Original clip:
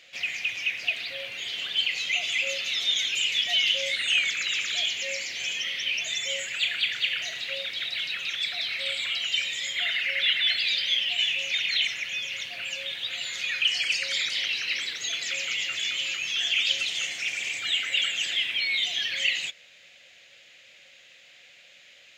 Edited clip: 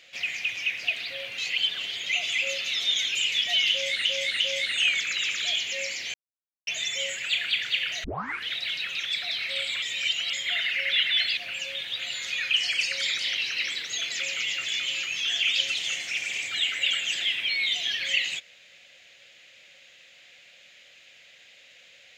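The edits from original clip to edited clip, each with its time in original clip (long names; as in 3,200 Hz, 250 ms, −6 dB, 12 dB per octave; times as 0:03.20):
0:01.38–0:02.06: reverse
0:03.70–0:04.05: repeat, 3 plays
0:05.44–0:05.97: silence
0:07.34: tape start 0.48 s
0:09.12–0:09.63: reverse
0:10.67–0:12.48: remove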